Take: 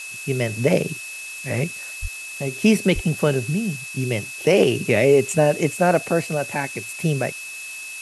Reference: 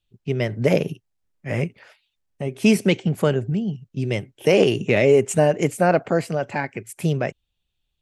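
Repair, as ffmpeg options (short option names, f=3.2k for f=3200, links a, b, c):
-filter_complex "[0:a]bandreject=f=2.6k:w=30,asplit=3[a][b][c];[a]afade=t=out:st=2.01:d=0.02[d];[b]highpass=f=140:w=0.5412,highpass=f=140:w=1.3066,afade=t=in:st=2.01:d=0.02,afade=t=out:st=2.13:d=0.02[e];[c]afade=t=in:st=2.13:d=0.02[f];[d][e][f]amix=inputs=3:normalize=0,asplit=3[g][h][i];[g]afade=t=out:st=2.94:d=0.02[j];[h]highpass=f=140:w=0.5412,highpass=f=140:w=1.3066,afade=t=in:st=2.94:d=0.02,afade=t=out:st=3.06:d=0.02[k];[i]afade=t=in:st=3.06:d=0.02[l];[j][k][l]amix=inputs=3:normalize=0,afftdn=nr=30:nf=-34"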